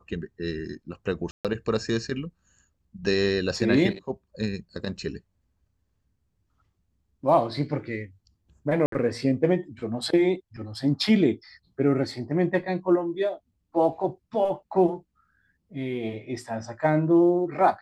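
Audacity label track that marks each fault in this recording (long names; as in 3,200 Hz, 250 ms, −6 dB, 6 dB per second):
1.310000	1.450000	drop-out 137 ms
8.860000	8.920000	drop-out 63 ms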